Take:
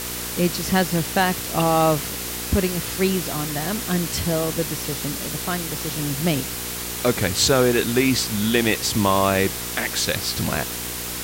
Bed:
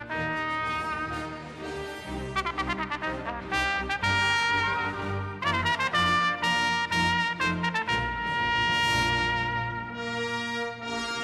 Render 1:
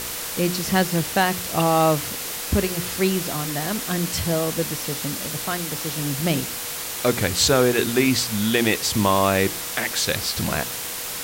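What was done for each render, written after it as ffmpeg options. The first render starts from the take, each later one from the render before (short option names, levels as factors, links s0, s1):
-af "bandreject=f=60:t=h:w=4,bandreject=f=120:t=h:w=4,bandreject=f=180:t=h:w=4,bandreject=f=240:t=h:w=4,bandreject=f=300:t=h:w=4,bandreject=f=360:t=h:w=4,bandreject=f=420:t=h:w=4"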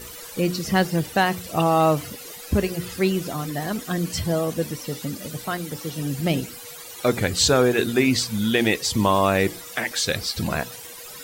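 -af "afftdn=nr=15:nf=-31"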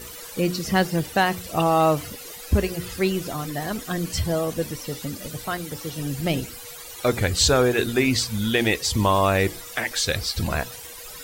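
-af "asubboost=boost=4.5:cutoff=75"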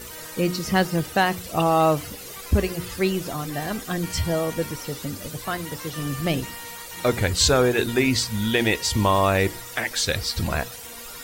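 -filter_complex "[1:a]volume=0.168[s0];[0:a][s0]amix=inputs=2:normalize=0"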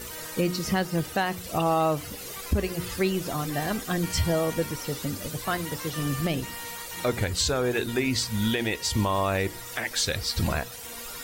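-af "alimiter=limit=0.178:level=0:latency=1:release=335"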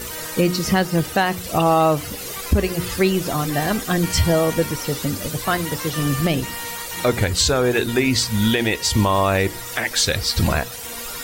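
-af "volume=2.37"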